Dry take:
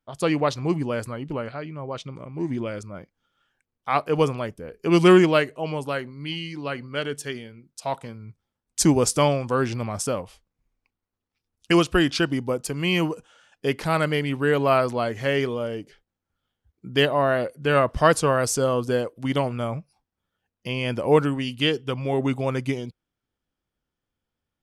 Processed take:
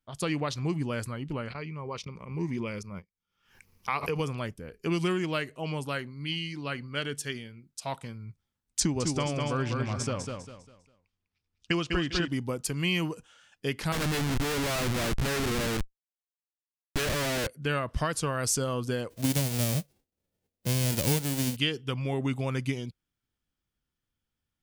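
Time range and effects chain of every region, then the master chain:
1.5–4.2 gate -39 dBFS, range -19 dB + ripple EQ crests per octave 0.83, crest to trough 8 dB + backwards sustainer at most 100 dB/s
8.8–12.28 Bessel low-pass 5400 Hz, order 4 + feedback echo 0.2 s, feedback 32%, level -6 dB
13.92–17.47 Schmitt trigger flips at -29 dBFS + Doppler distortion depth 0.79 ms
19.1–21.55 spectral whitening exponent 0.1 + resonant low shelf 780 Hz +12.5 dB, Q 1.5 + mismatched tape noise reduction decoder only
whole clip: compressor 10:1, threshold -20 dBFS; bell 580 Hz -8 dB 2.3 oct

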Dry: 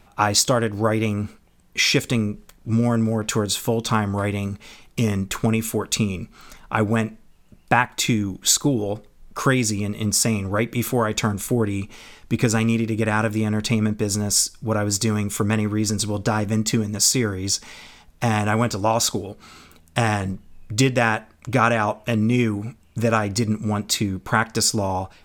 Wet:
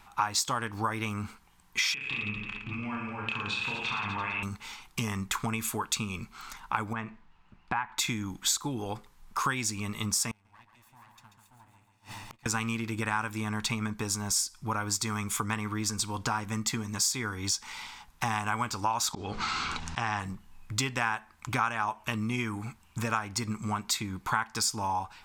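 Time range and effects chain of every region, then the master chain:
1.94–4.43 synth low-pass 2600 Hz, resonance Q 13 + compressor 16:1, threshold -28 dBFS + reverse bouncing-ball echo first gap 30 ms, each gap 1.25×, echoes 8, each echo -2 dB
6.93–7.98 LPF 2900 Hz + compressor 2:1, threshold -26 dBFS
10.31–12.46 minimum comb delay 1.1 ms + feedback echo 0.138 s, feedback 53%, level -6.5 dB + flipped gate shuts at -24 dBFS, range -32 dB
19.13–20.2 LPF 6300 Hz 24 dB/oct + auto swell 0.21 s + fast leveller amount 70%
whole clip: resonant low shelf 730 Hz -7 dB, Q 3; compressor 2.5:1, threshold -30 dBFS

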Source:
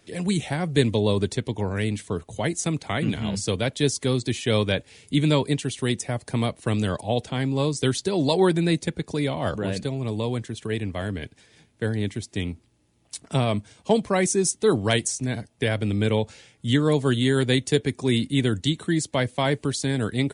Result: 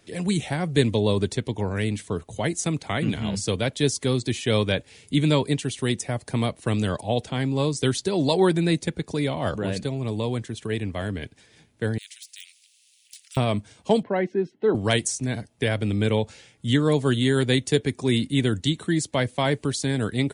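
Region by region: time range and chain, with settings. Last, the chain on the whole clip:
11.98–13.37 de-esser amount 85% + steep high-pass 2600 Hz + spectral compressor 2:1
14.03–14.75 BPF 180–3300 Hz + air absorption 380 m + notch comb 1200 Hz
whole clip: dry

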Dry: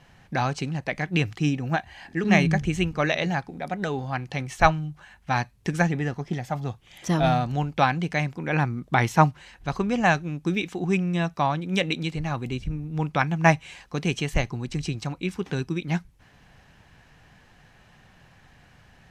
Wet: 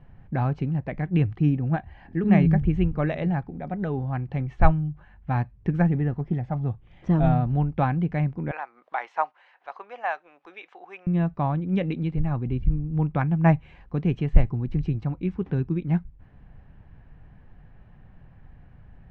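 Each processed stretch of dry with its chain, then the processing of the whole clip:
8.51–11.07 HPF 660 Hz 24 dB/oct + upward compressor, threshold -41 dBFS
whole clip: LPF 2600 Hz 12 dB/oct; tilt -3.5 dB/oct; gain -5.5 dB

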